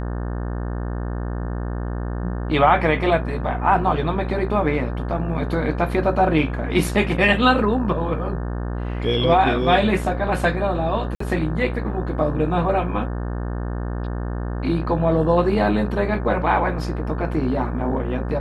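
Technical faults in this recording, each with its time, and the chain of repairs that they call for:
buzz 60 Hz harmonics 30 -26 dBFS
11.15–11.20 s: dropout 54 ms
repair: de-hum 60 Hz, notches 30; interpolate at 11.15 s, 54 ms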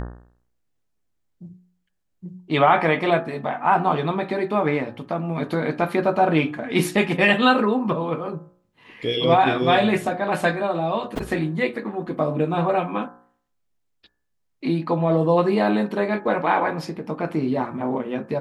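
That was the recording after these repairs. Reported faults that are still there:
nothing left

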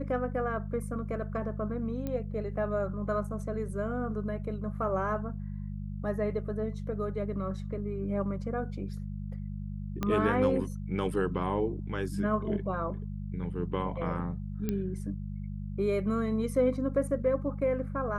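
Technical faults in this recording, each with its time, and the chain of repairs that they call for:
hum 50 Hz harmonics 4 -37 dBFS
2.07 s: pop -22 dBFS
10.03 s: pop -17 dBFS
14.69 s: pop -18 dBFS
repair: de-click; de-hum 50 Hz, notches 4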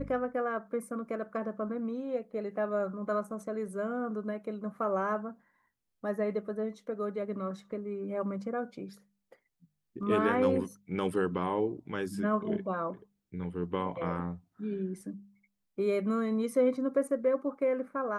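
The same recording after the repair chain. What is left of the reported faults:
10.03 s: pop

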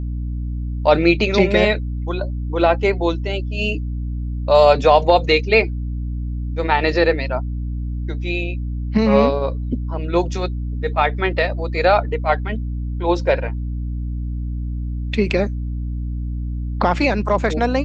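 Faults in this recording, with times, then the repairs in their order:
hum 60 Hz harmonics 5 -24 dBFS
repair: de-hum 60 Hz, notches 5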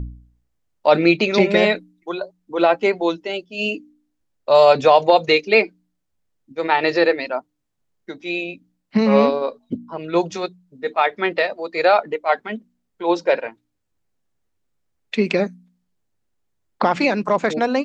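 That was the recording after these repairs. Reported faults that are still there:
nothing left

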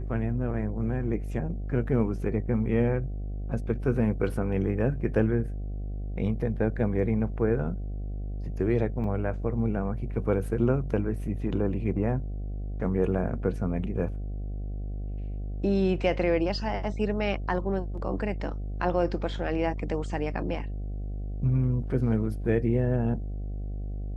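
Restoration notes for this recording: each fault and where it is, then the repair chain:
buzz 50 Hz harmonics 15 -33 dBFS
9.04 s: dropout 2.9 ms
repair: de-hum 50 Hz, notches 15; interpolate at 9.04 s, 2.9 ms

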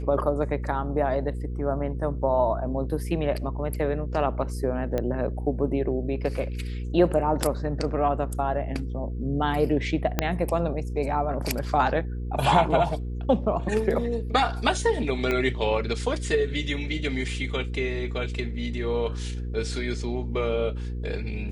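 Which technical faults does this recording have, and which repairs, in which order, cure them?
hum 60 Hz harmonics 8 -31 dBFS
4.98 s: pop -15 dBFS
10.19 s: pop -7 dBFS
15.31 s: pop -13 dBFS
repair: de-click; de-hum 60 Hz, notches 8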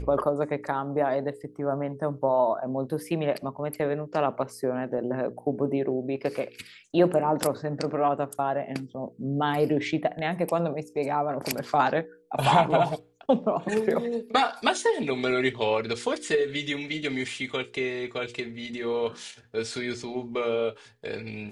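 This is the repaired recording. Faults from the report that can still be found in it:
10.19 s: pop
15.31 s: pop

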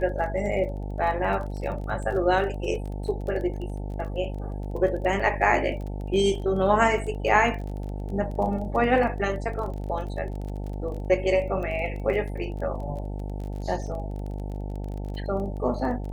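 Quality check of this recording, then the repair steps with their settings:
buzz 50 Hz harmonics 18 -32 dBFS
crackle 23 per s -34 dBFS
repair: de-click; de-hum 50 Hz, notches 18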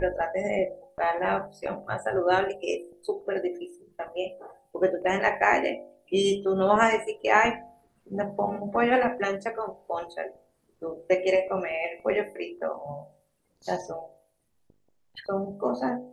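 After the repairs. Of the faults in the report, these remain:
nothing left

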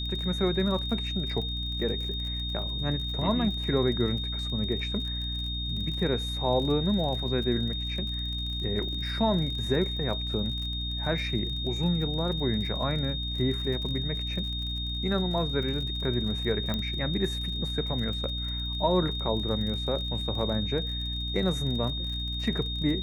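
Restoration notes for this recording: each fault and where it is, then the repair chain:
crackle 40 per s -35 dBFS
hum 60 Hz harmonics 5 -34 dBFS
whine 3.7 kHz -33 dBFS
16.74 s: pop -17 dBFS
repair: de-click; de-hum 60 Hz, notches 5; band-stop 3.7 kHz, Q 30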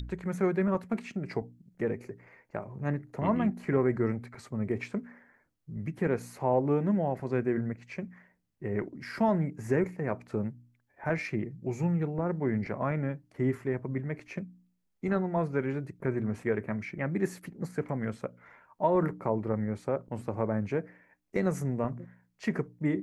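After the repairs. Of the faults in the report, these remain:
nothing left

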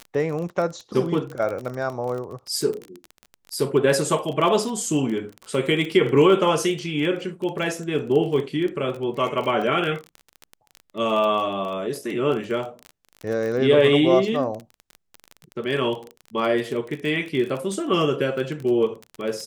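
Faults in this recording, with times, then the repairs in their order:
crackle 24 per s -27 dBFS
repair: de-click

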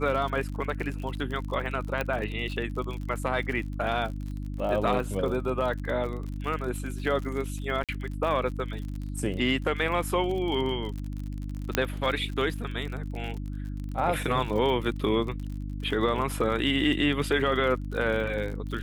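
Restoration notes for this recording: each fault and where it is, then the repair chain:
crackle 54 per s -34 dBFS
hum 50 Hz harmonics 6 -34 dBFS
2.01 s: pop -15 dBFS
7.84–7.89 s: dropout 47 ms
11.75 s: pop -7 dBFS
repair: de-click; de-hum 50 Hz, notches 6; interpolate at 7.84 s, 47 ms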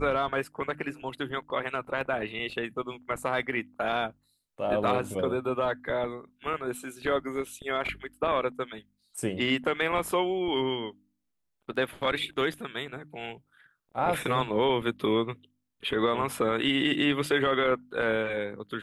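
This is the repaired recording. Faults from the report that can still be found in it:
2.01 s: pop
11.75 s: pop

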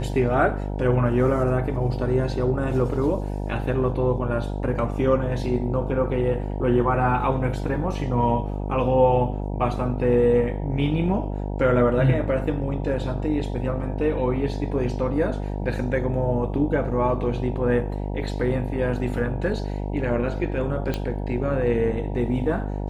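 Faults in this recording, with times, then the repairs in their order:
buzz 50 Hz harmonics 19 -28 dBFS
20.94 s: pop -13 dBFS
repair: de-click; de-hum 50 Hz, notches 19

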